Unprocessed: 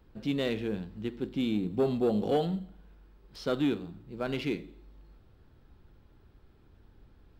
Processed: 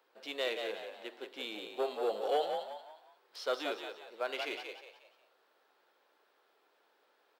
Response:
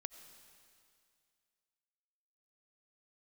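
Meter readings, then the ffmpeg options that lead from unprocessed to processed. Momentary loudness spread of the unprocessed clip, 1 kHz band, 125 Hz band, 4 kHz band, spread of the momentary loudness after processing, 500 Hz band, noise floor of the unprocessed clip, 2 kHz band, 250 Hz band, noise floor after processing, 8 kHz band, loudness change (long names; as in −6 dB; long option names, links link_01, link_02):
11 LU, +1.5 dB, below −35 dB, +1.0 dB, 15 LU, −4.0 dB, −60 dBFS, +1.0 dB, −18.5 dB, −73 dBFS, can't be measured, −6.0 dB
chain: -filter_complex "[0:a]highpass=frequency=500:width=0.5412,highpass=frequency=500:width=1.3066,asplit=5[link_01][link_02][link_03][link_04][link_05];[link_02]adelay=180,afreqshift=58,volume=-6dB[link_06];[link_03]adelay=360,afreqshift=116,volume=-14.9dB[link_07];[link_04]adelay=540,afreqshift=174,volume=-23.7dB[link_08];[link_05]adelay=720,afreqshift=232,volume=-32.6dB[link_09];[link_01][link_06][link_07][link_08][link_09]amix=inputs=5:normalize=0"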